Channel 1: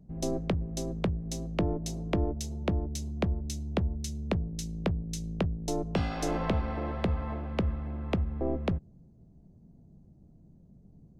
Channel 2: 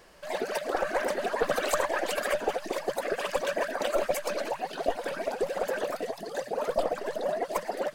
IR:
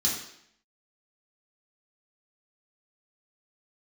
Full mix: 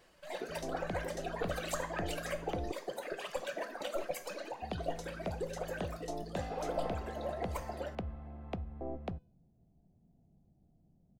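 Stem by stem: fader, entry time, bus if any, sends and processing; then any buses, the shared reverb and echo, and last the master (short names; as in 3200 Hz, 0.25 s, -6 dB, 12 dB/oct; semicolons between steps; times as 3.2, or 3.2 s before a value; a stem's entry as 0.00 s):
-7.5 dB, 0.40 s, muted 2.72–4.62, no send, bell 730 Hz +9.5 dB 0.38 oct
-4.0 dB, 0.00 s, send -15 dB, reverb removal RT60 1.7 s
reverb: on, RT60 0.70 s, pre-delay 3 ms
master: resonator 500 Hz, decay 0.45 s, mix 40%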